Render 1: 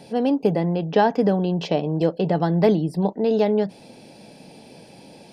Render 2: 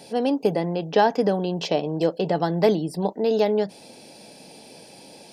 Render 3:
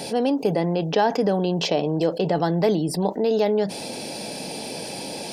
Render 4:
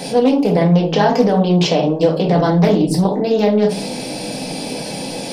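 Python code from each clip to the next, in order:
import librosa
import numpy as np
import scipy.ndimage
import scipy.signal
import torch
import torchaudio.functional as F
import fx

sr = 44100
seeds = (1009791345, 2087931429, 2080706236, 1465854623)

y1 = fx.bass_treble(x, sr, bass_db=-7, treble_db=7)
y2 = fx.env_flatten(y1, sr, amount_pct=50)
y2 = y2 * 10.0 ** (-2.5 / 20.0)
y3 = fx.room_shoebox(y2, sr, seeds[0], volume_m3=230.0, walls='furnished', distance_m=2.0)
y3 = fx.doppler_dist(y3, sr, depth_ms=0.23)
y3 = y3 * 10.0 ** (3.0 / 20.0)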